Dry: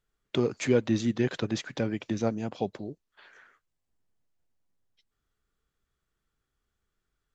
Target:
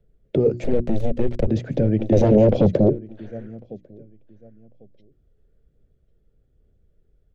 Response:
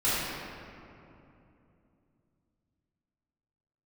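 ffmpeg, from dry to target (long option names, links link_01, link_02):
-filter_complex "[0:a]asplit=3[link_01][link_02][link_03];[link_01]afade=type=out:start_time=0.63:duration=0.02[link_04];[link_02]aeval=exprs='0.266*(cos(1*acos(clip(val(0)/0.266,-1,1)))-cos(1*PI/2))+0.0299*(cos(5*acos(clip(val(0)/0.266,-1,1)))-cos(5*PI/2))+0.0596*(cos(7*acos(clip(val(0)/0.266,-1,1)))-cos(7*PI/2))+0.0531*(cos(8*acos(clip(val(0)/0.266,-1,1)))-cos(8*PI/2))':channel_layout=same,afade=type=in:start_time=0.63:duration=0.02,afade=type=out:start_time=1.47:duration=0.02[link_05];[link_03]afade=type=in:start_time=1.47:duration=0.02[link_06];[link_04][link_05][link_06]amix=inputs=3:normalize=0,bass=frequency=250:gain=9,treble=frequency=4000:gain=-9,aphaser=in_gain=1:out_gain=1:delay=2.4:decay=0.24:speed=1.2:type=sinusoidal,aecho=1:1:1097|2194:0.0708|0.0142,acrossover=split=91|700|1700[link_07][link_08][link_09][link_10];[link_07]acompressor=threshold=-22dB:ratio=4[link_11];[link_08]acompressor=threshold=-27dB:ratio=4[link_12];[link_09]acompressor=threshold=-35dB:ratio=4[link_13];[link_10]acompressor=threshold=-43dB:ratio=4[link_14];[link_11][link_12][link_13][link_14]amix=inputs=4:normalize=0,alimiter=limit=-22dB:level=0:latency=1:release=13,asettb=1/sr,asplit=3[link_15][link_16][link_17];[link_15]atrim=end=2.124[link_18];[link_16]atrim=start=2.12:end=2.9,asetpts=PTS-STARTPTS,afade=type=in:duration=0.004:curve=qsin,afade=type=out:start_time=0.776:duration=0.004:curve=qsin,aeval=exprs='0.0794*sin(PI/2*2.24*val(0)/0.0794)':channel_layout=same[link_19];[link_17]atrim=start=2.896[link_20];[link_18][link_19]acrossfade=duration=0.004:curve1=hsin:curve2=qsin[link_21];[link_21][link_20]acrossfade=duration=0.004:curve1=qsin:curve2=hsin,lowshelf=frequency=760:width_type=q:width=3:gain=11,bandreject=frequency=60:width_type=h:width=6,bandreject=frequency=120:width_type=h:width=6,bandreject=frequency=180:width_type=h:width=6,bandreject=frequency=240:width_type=h:width=6,bandreject=frequency=300:width_type=h:width=6,bandreject=frequency=360:width_type=h:width=6"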